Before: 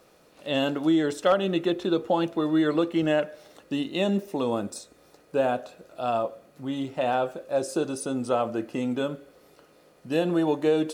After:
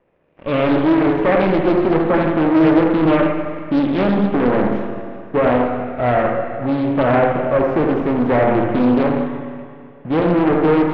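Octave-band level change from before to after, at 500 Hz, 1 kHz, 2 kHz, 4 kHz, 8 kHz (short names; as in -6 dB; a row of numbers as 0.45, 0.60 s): +9.5 dB, +10.5 dB, +11.0 dB, 0.0 dB, under -20 dB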